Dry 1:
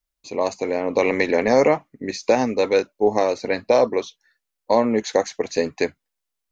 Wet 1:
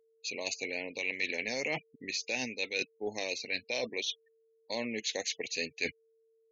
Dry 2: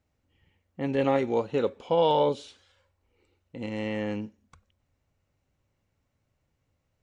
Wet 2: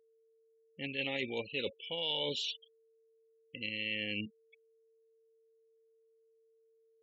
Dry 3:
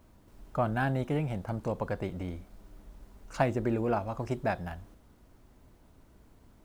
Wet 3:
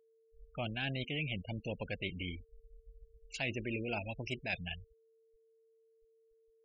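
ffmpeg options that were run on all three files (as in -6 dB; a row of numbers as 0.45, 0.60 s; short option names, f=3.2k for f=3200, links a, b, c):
-af "highshelf=f=1.8k:t=q:w=3:g=14,afftfilt=real='re*gte(hypot(re,im),0.0282)':imag='im*gte(hypot(re,im),0.0282)':win_size=1024:overlap=0.75,areverse,acompressor=threshold=-30dB:ratio=4,areverse,aeval=exprs='val(0)+0.000708*sin(2*PI*450*n/s)':c=same,volume=-4.5dB"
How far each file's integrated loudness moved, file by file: -13.5, -9.0, -7.0 LU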